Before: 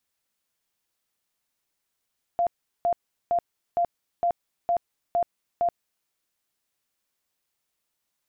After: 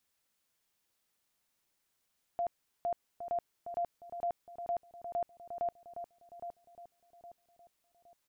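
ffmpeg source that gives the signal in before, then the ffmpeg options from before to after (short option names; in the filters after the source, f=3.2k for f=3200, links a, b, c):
-f lavfi -i "aevalsrc='0.106*sin(2*PI*693*mod(t,0.46))*lt(mod(t,0.46),54/693)':d=3.68:s=44100"
-filter_complex "[0:a]alimiter=level_in=5.5dB:limit=-24dB:level=0:latency=1:release=17,volume=-5.5dB,asplit=2[a][b];[b]adelay=814,lowpass=f=940:p=1,volume=-7dB,asplit=2[c][d];[d]adelay=814,lowpass=f=940:p=1,volume=0.43,asplit=2[e][f];[f]adelay=814,lowpass=f=940:p=1,volume=0.43,asplit=2[g][h];[h]adelay=814,lowpass=f=940:p=1,volume=0.43,asplit=2[i][j];[j]adelay=814,lowpass=f=940:p=1,volume=0.43[k];[c][e][g][i][k]amix=inputs=5:normalize=0[l];[a][l]amix=inputs=2:normalize=0"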